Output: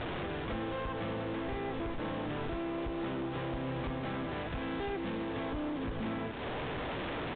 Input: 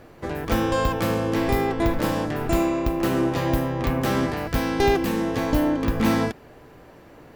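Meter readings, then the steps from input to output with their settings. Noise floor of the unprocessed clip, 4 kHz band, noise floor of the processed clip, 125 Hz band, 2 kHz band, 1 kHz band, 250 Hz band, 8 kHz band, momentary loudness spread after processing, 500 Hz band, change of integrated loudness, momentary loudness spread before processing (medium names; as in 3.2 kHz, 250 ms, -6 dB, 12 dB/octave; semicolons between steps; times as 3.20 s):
-48 dBFS, -10.5 dB, -38 dBFS, -13.0 dB, -10.5 dB, -12.5 dB, -13.5 dB, under -40 dB, 1 LU, -13.0 dB, -13.5 dB, 4 LU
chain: one-bit delta coder 32 kbps, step -28 dBFS; compression, threshold -28 dBFS, peak gain reduction 12 dB; hard clipper -30 dBFS, distortion -11 dB; resampled via 8 kHz; frequency-shifting echo 189 ms, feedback 58%, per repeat +130 Hz, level -16 dB; trim -3 dB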